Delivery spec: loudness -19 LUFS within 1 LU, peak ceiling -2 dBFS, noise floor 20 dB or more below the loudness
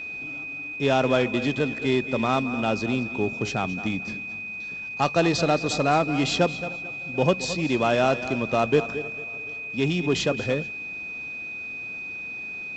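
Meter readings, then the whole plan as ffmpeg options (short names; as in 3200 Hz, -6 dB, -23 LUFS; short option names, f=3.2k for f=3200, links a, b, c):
steady tone 2500 Hz; tone level -32 dBFS; loudness -25.5 LUFS; peak -6.5 dBFS; loudness target -19.0 LUFS
-> -af "bandreject=f=2.5k:w=30"
-af "volume=6.5dB,alimiter=limit=-2dB:level=0:latency=1"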